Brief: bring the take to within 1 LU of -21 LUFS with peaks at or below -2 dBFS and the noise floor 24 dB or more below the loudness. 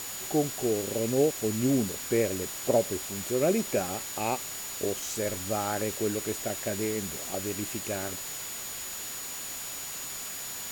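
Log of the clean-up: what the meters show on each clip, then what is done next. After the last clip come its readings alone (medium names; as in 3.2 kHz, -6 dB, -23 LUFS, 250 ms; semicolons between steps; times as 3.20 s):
steady tone 6.9 kHz; tone level -40 dBFS; noise floor -38 dBFS; noise floor target -54 dBFS; loudness -30.0 LUFS; peak level -12.0 dBFS; loudness target -21.0 LUFS
-> band-stop 6.9 kHz, Q 30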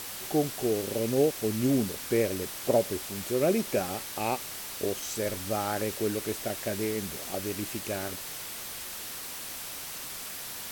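steady tone not found; noise floor -40 dBFS; noise floor target -55 dBFS
-> noise print and reduce 15 dB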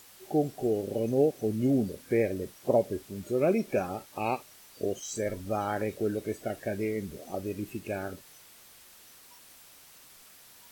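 noise floor -54 dBFS; noise floor target -55 dBFS
-> noise print and reduce 6 dB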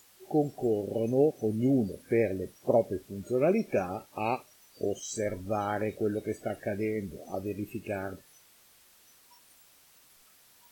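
noise floor -60 dBFS; loudness -31.0 LUFS; peak level -12.5 dBFS; loudness target -21.0 LUFS
-> trim +10 dB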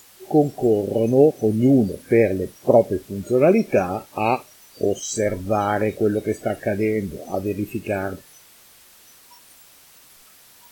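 loudness -21.0 LUFS; peak level -2.5 dBFS; noise floor -50 dBFS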